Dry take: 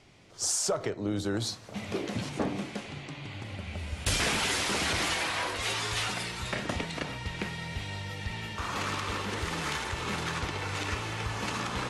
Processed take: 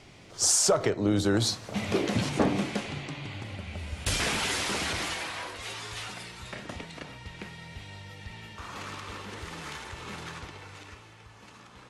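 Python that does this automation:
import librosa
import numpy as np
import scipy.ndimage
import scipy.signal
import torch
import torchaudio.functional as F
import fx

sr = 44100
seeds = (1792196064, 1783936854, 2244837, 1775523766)

y = fx.gain(x, sr, db=fx.line((2.73, 6.0), (3.67, -0.5), (4.69, -0.5), (5.6, -7.0), (10.28, -7.0), (11.2, -18.0)))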